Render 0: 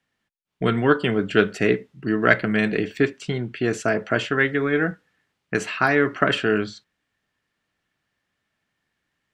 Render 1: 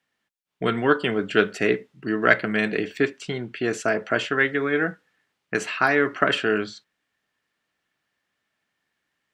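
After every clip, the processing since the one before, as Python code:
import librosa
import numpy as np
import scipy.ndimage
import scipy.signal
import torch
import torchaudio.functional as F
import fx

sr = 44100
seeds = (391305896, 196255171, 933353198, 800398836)

y = fx.low_shelf(x, sr, hz=160.0, db=-11.5)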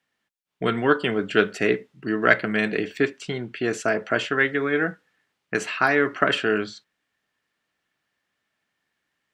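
y = x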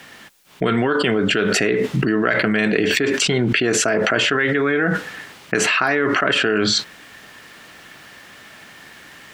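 y = fx.env_flatten(x, sr, amount_pct=100)
y = F.gain(torch.from_numpy(y), -5.0).numpy()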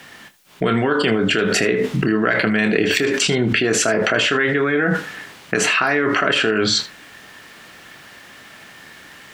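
y = fx.room_early_taps(x, sr, ms=(27, 79), db=(-10.0, -17.0))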